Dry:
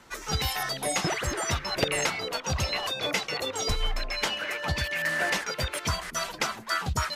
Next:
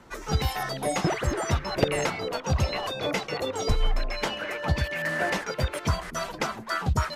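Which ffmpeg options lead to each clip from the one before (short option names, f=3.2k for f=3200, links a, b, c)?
-af "tiltshelf=f=1.3k:g=5.5"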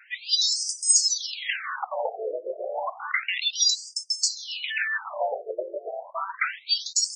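-af "crystalizer=i=8:c=0,afftfilt=real='re*between(b*sr/1024,470*pow(6800/470,0.5+0.5*sin(2*PI*0.31*pts/sr))/1.41,470*pow(6800/470,0.5+0.5*sin(2*PI*0.31*pts/sr))*1.41)':imag='im*between(b*sr/1024,470*pow(6800/470,0.5+0.5*sin(2*PI*0.31*pts/sr))/1.41,470*pow(6800/470,0.5+0.5*sin(2*PI*0.31*pts/sr))*1.41)':win_size=1024:overlap=0.75,volume=1.5dB"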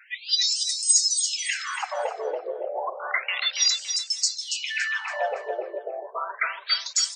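-af "aecho=1:1:282|564|846|1128:0.447|0.147|0.0486|0.0161"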